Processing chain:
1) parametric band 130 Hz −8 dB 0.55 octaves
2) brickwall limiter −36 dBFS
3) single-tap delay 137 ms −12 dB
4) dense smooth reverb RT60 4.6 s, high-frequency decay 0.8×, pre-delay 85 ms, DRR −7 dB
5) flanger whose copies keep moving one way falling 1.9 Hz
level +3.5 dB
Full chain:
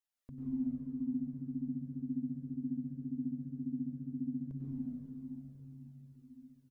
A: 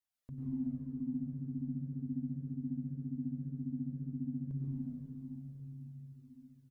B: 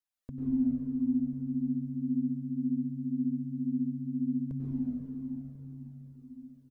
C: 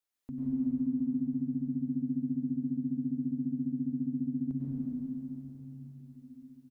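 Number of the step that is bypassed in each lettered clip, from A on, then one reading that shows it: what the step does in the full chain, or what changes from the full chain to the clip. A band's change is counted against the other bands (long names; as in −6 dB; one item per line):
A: 1, change in momentary loudness spread −5 LU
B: 2, average gain reduction 6.5 dB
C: 5, change in integrated loudness +6.0 LU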